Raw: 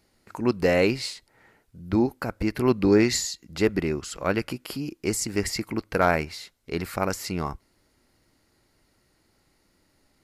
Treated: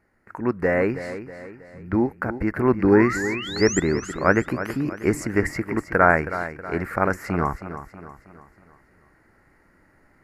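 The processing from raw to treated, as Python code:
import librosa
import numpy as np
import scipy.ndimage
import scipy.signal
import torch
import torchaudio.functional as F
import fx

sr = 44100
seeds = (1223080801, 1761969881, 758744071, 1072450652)

p1 = fx.high_shelf_res(x, sr, hz=2500.0, db=-12.0, q=3.0)
p2 = fx.spec_paint(p1, sr, seeds[0], shape='rise', start_s=2.92, length_s=0.88, low_hz=780.0, high_hz=7700.0, level_db=-32.0)
p3 = fx.dynamic_eq(p2, sr, hz=3400.0, q=1.4, threshold_db=-42.0, ratio=4.0, max_db=-6)
p4 = fx.rider(p3, sr, range_db=4, speed_s=2.0)
p5 = p4 + fx.echo_feedback(p4, sr, ms=320, feedback_pct=46, wet_db=-12, dry=0)
y = F.gain(torch.from_numpy(p5), 3.0).numpy()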